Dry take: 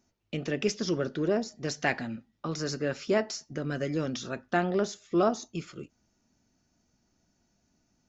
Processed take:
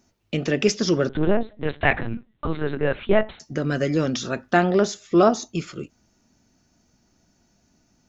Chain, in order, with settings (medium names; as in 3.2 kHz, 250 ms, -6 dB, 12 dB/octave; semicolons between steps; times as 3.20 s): 1.09–3.40 s: LPC vocoder at 8 kHz pitch kept; trim +8.5 dB